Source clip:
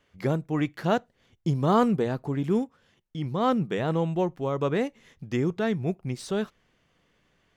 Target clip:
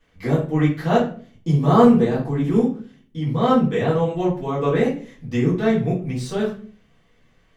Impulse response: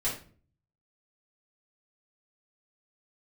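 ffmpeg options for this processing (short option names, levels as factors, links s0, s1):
-filter_complex "[1:a]atrim=start_sample=2205[s0];[0:a][s0]afir=irnorm=-1:irlink=0,volume=0.891"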